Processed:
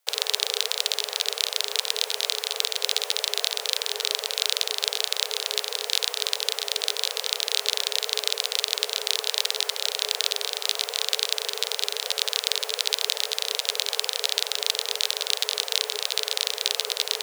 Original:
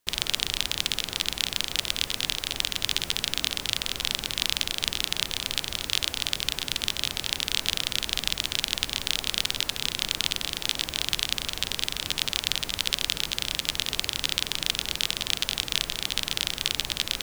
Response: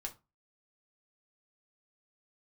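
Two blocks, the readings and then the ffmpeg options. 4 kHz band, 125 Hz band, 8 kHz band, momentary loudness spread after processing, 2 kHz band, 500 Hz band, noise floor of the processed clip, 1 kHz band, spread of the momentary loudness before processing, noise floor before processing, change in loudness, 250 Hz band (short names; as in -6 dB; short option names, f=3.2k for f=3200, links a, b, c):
+2.0 dB, under -40 dB, +3.0 dB, 2 LU, -1.0 dB, +9.0 dB, -38 dBFS, +3.0 dB, 2 LU, -40 dBFS, +2.0 dB, under -15 dB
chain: -af "afreqshift=410,aeval=exprs='0.708*(cos(1*acos(clip(val(0)/0.708,-1,1)))-cos(1*PI/2))+0.00447*(cos(3*acos(clip(val(0)/0.708,-1,1)))-cos(3*PI/2))':c=same,volume=2dB"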